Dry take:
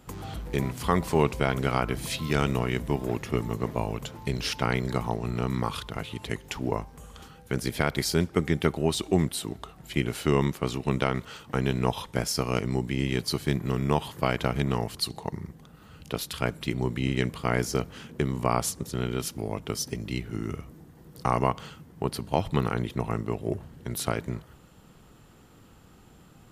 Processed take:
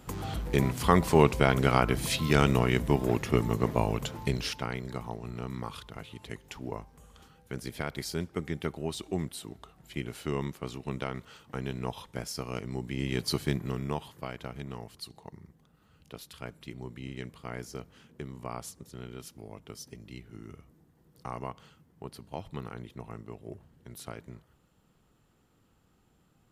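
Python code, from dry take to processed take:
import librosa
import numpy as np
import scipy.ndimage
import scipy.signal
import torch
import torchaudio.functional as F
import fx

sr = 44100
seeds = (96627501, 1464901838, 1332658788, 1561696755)

y = fx.gain(x, sr, db=fx.line((4.22, 2.0), (4.7, -9.0), (12.67, -9.0), (13.35, -1.0), (14.31, -13.5)))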